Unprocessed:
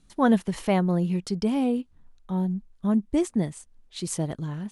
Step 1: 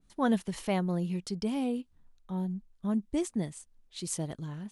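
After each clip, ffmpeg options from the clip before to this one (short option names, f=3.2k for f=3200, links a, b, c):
-af "adynamicequalizer=threshold=0.00794:dfrequency=2500:dqfactor=0.7:tfrequency=2500:tqfactor=0.7:attack=5:release=100:ratio=0.375:range=2.5:mode=boostabove:tftype=highshelf,volume=-7dB"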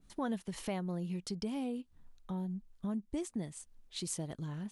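-af "acompressor=threshold=-42dB:ratio=2.5,volume=3dB"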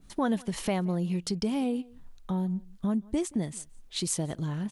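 -filter_complex "[0:a]asplit=2[a][b];[b]adelay=174.9,volume=-24dB,highshelf=f=4k:g=-3.94[c];[a][c]amix=inputs=2:normalize=0,volume=8.5dB"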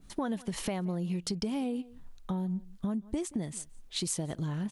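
-af "acompressor=threshold=-29dB:ratio=6"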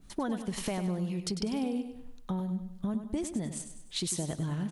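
-af "aecho=1:1:99|198|297|396|495:0.335|0.147|0.0648|0.0285|0.0126"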